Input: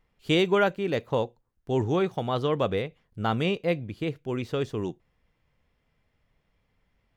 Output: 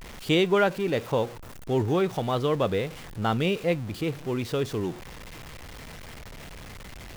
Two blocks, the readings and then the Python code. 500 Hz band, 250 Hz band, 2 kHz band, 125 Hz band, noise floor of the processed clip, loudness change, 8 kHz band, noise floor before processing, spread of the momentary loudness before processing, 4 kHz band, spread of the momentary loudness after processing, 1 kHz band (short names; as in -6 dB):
+1.0 dB, +1.0 dB, +1.0 dB, +1.5 dB, -42 dBFS, +1.0 dB, n/a, -74 dBFS, 10 LU, +1.0 dB, 20 LU, +0.5 dB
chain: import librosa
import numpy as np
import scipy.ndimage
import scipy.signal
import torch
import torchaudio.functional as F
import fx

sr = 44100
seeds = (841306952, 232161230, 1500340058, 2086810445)

y = x + 0.5 * 10.0 ** (-36.0 / 20.0) * np.sign(x)